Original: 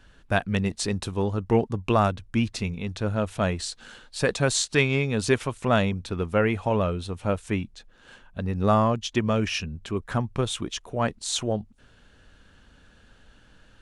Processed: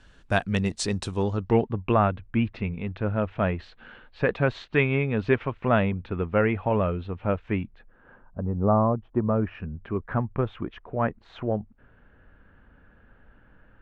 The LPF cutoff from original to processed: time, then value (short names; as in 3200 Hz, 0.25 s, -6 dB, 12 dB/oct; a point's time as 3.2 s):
LPF 24 dB/oct
1.13 s 9400 Hz
1.55 s 4500 Hz
1.78 s 2600 Hz
7.62 s 2600 Hz
8.42 s 1100 Hz
9.13 s 1100 Hz
9.84 s 2000 Hz